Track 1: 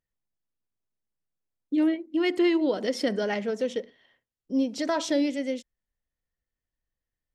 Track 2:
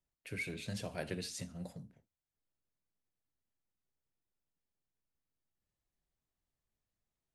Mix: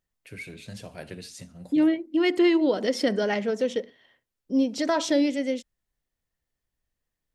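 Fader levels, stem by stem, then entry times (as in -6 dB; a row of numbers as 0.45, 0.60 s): +2.5, +0.5 dB; 0.00, 0.00 s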